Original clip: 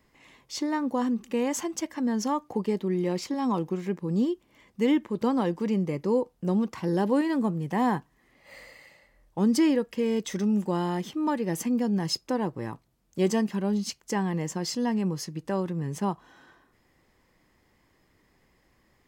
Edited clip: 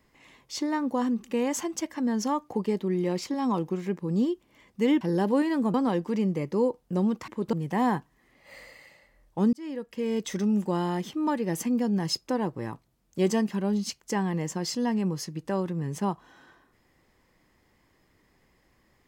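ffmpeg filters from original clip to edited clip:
ffmpeg -i in.wav -filter_complex "[0:a]asplit=6[link_01][link_02][link_03][link_04][link_05][link_06];[link_01]atrim=end=5.012[link_07];[link_02]atrim=start=6.798:end=7.532[link_08];[link_03]atrim=start=5.258:end=6.802[link_09];[link_04]atrim=start=5.008:end=5.262[link_10];[link_05]atrim=start=7.528:end=9.53,asetpts=PTS-STARTPTS,afade=type=out:start_time=1.998:duration=0.004:curve=hsin[link_11];[link_06]atrim=start=9.53,asetpts=PTS-STARTPTS,afade=type=in:duration=0.72[link_12];[link_07][link_08]acrossfade=duration=0.004:curve1=hsin:curve2=hsin[link_13];[link_13][link_09]acrossfade=duration=0.004:curve1=hsin:curve2=hsin[link_14];[link_14][link_10]acrossfade=duration=0.004:curve1=hsin:curve2=hsin[link_15];[link_11][link_12]concat=n=2:v=0:a=1[link_16];[link_15][link_16]acrossfade=duration=0.004:curve1=hsin:curve2=hsin" out.wav

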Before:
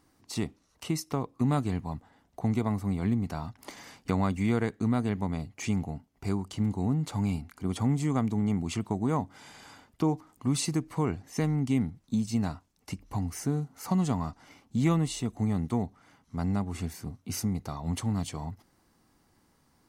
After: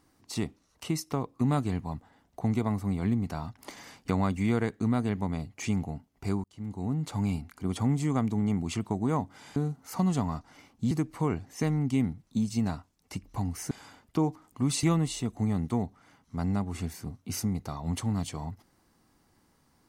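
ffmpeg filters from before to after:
ffmpeg -i in.wav -filter_complex "[0:a]asplit=6[link_01][link_02][link_03][link_04][link_05][link_06];[link_01]atrim=end=6.44,asetpts=PTS-STARTPTS,afade=type=out:start_time=6.436:duration=0.004:curve=hsin[link_07];[link_02]atrim=start=6.44:end=9.562,asetpts=PTS-STARTPTS,afade=type=in:duration=0.92:curve=qsin[link_08];[link_03]atrim=start=13.478:end=14.832[link_09];[link_04]atrim=start=10.678:end=13.482[link_10];[link_05]atrim=start=9.558:end=10.682[link_11];[link_06]atrim=start=14.828[link_12];[link_07][link_08]concat=n=2:v=0:a=1[link_13];[link_13][link_09]acrossfade=duration=0.004:curve1=hsin:curve2=hsin[link_14];[link_14][link_10]acrossfade=duration=0.004:curve1=hsin:curve2=hsin[link_15];[link_15][link_11]acrossfade=duration=0.004:curve1=hsin:curve2=hsin[link_16];[link_16][link_12]acrossfade=duration=0.004:curve1=hsin:curve2=hsin" out.wav

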